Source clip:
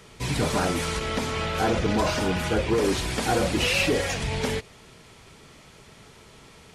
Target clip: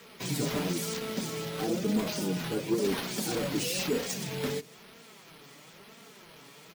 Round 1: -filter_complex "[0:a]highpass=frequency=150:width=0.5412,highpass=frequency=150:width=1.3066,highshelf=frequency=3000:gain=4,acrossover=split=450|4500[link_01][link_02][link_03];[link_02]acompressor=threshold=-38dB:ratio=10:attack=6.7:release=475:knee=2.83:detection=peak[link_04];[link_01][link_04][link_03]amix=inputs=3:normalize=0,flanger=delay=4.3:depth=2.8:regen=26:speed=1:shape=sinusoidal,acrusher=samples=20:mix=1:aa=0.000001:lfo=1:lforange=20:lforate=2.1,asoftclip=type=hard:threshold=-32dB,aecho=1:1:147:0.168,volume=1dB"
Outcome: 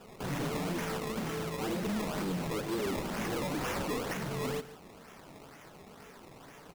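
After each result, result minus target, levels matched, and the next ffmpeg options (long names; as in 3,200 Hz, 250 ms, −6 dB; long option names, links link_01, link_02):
hard clipping: distortion +20 dB; echo-to-direct +9.5 dB; sample-and-hold swept by an LFO: distortion +6 dB
-filter_complex "[0:a]highpass=frequency=150:width=0.5412,highpass=frequency=150:width=1.3066,highshelf=frequency=3000:gain=4,acrossover=split=450|4500[link_01][link_02][link_03];[link_02]acompressor=threshold=-38dB:ratio=10:attack=6.7:release=475:knee=2.83:detection=peak[link_04];[link_01][link_04][link_03]amix=inputs=3:normalize=0,flanger=delay=4.3:depth=2.8:regen=26:speed=1:shape=sinusoidal,acrusher=samples=20:mix=1:aa=0.000001:lfo=1:lforange=20:lforate=2.1,asoftclip=type=hard:threshold=-21.5dB,aecho=1:1:147:0.168,volume=1dB"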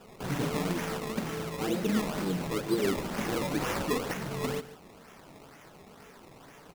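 echo-to-direct +9.5 dB; sample-and-hold swept by an LFO: distortion +6 dB
-filter_complex "[0:a]highpass=frequency=150:width=0.5412,highpass=frequency=150:width=1.3066,highshelf=frequency=3000:gain=4,acrossover=split=450|4500[link_01][link_02][link_03];[link_02]acompressor=threshold=-38dB:ratio=10:attack=6.7:release=475:knee=2.83:detection=peak[link_04];[link_01][link_04][link_03]amix=inputs=3:normalize=0,flanger=delay=4.3:depth=2.8:regen=26:speed=1:shape=sinusoidal,acrusher=samples=20:mix=1:aa=0.000001:lfo=1:lforange=20:lforate=2.1,asoftclip=type=hard:threshold=-21.5dB,aecho=1:1:147:0.0562,volume=1dB"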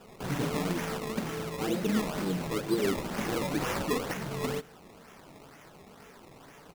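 sample-and-hold swept by an LFO: distortion +6 dB
-filter_complex "[0:a]highpass=frequency=150:width=0.5412,highpass=frequency=150:width=1.3066,highshelf=frequency=3000:gain=4,acrossover=split=450|4500[link_01][link_02][link_03];[link_02]acompressor=threshold=-38dB:ratio=10:attack=6.7:release=475:knee=2.83:detection=peak[link_04];[link_01][link_04][link_03]amix=inputs=3:normalize=0,flanger=delay=4.3:depth=2.8:regen=26:speed=1:shape=sinusoidal,acrusher=samples=4:mix=1:aa=0.000001:lfo=1:lforange=4:lforate=2.1,asoftclip=type=hard:threshold=-21.5dB,aecho=1:1:147:0.0562,volume=1dB"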